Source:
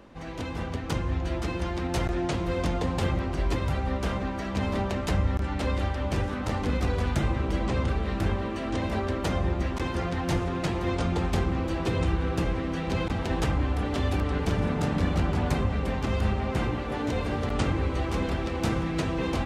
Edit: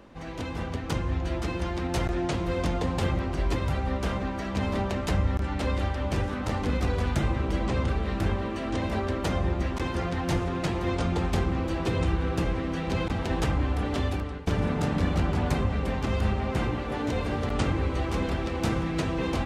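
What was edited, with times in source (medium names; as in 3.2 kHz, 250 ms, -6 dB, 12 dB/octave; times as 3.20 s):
13.99–14.47 s: fade out, to -16.5 dB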